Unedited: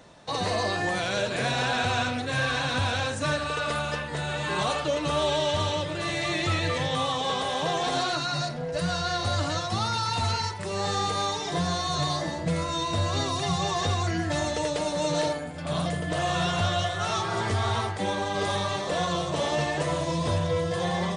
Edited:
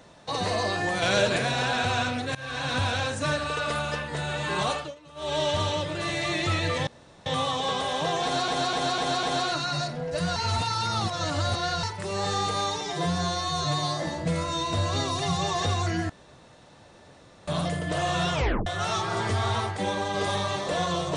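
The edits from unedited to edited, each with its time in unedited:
0:01.02–0:01.38: clip gain +5 dB
0:02.35–0:02.73: fade in, from −22 dB
0:04.70–0:05.40: duck −22 dB, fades 0.25 s
0:06.87: splice in room tone 0.39 s
0:07.84–0:08.09: repeat, 5 plays
0:08.97–0:10.44: reverse
0:11.42–0:12.23: time-stretch 1.5×
0:14.30–0:15.68: fill with room tone
0:16.54: tape stop 0.33 s

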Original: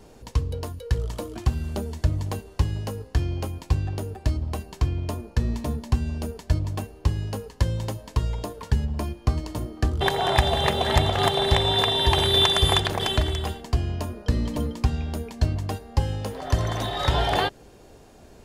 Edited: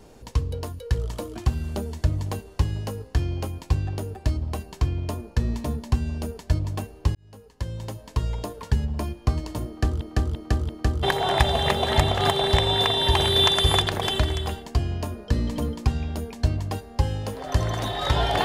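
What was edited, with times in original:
0:07.15–0:08.33: fade in
0:09.67–0:10.01: repeat, 4 plays

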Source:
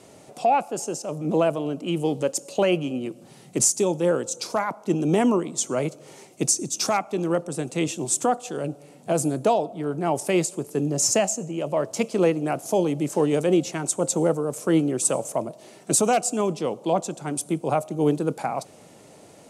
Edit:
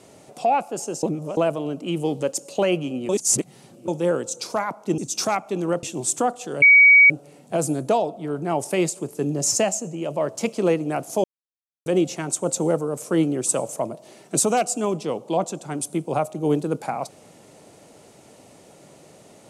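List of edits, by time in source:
0:01.03–0:01.37: reverse
0:03.09–0:03.88: reverse
0:04.98–0:06.60: remove
0:07.45–0:07.87: remove
0:08.66: insert tone 2,260 Hz −8 dBFS 0.48 s
0:12.80–0:13.42: silence

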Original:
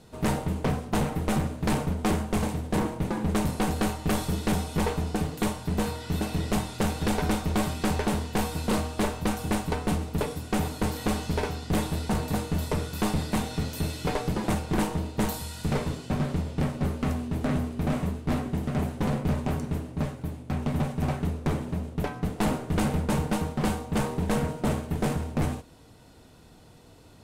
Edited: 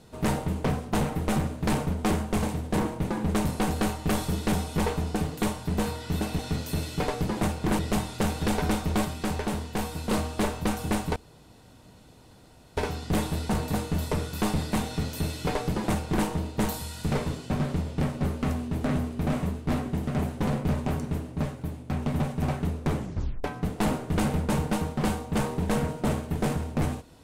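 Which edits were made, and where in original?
0:07.65–0:08.71: clip gain −3 dB
0:09.76–0:11.37: fill with room tone
0:13.46–0:14.86: duplicate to 0:06.39
0:21.57: tape stop 0.47 s

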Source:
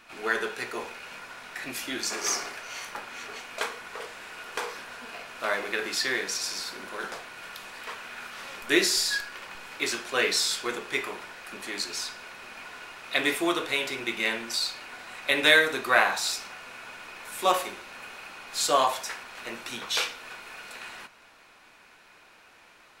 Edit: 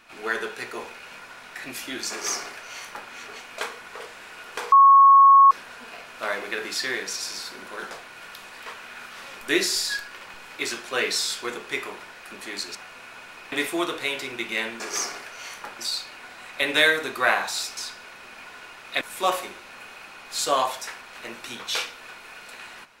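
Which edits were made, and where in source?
0:02.11–0:03.10: duplicate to 0:14.48
0:04.72: insert tone 1,100 Hz −9 dBFS 0.79 s
0:11.96–0:13.20: swap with 0:16.46–0:17.23

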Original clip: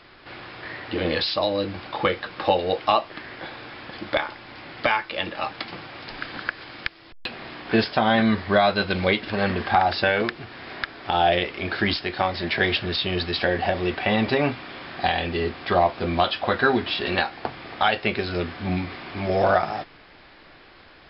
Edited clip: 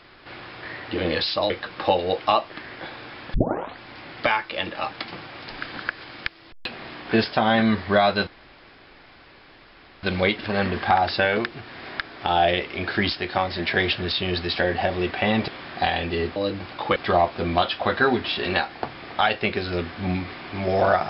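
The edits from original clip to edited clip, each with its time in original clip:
0:01.50–0:02.10: move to 0:15.58
0:03.94: tape start 0.45 s
0:08.87: splice in room tone 1.76 s
0:14.32–0:14.70: remove

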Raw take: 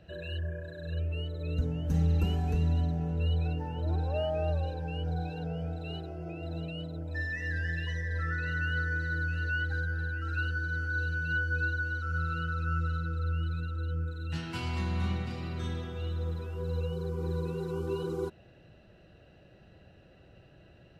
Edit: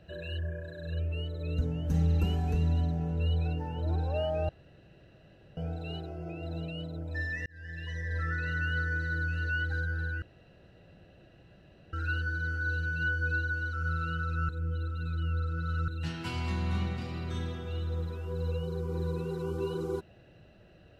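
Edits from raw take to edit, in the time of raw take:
0:04.49–0:05.57: fill with room tone
0:07.46–0:08.14: fade in
0:10.22: splice in room tone 1.71 s
0:12.78–0:14.17: reverse

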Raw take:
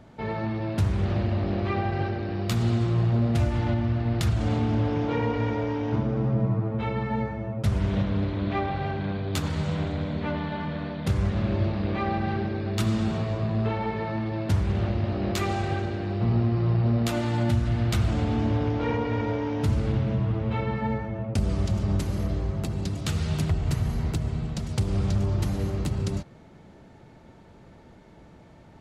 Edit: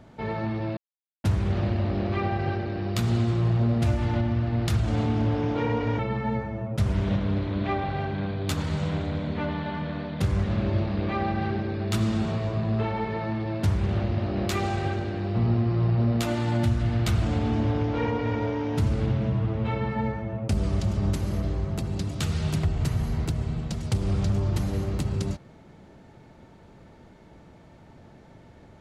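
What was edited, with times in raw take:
0:00.77: splice in silence 0.47 s
0:05.52–0:06.85: remove

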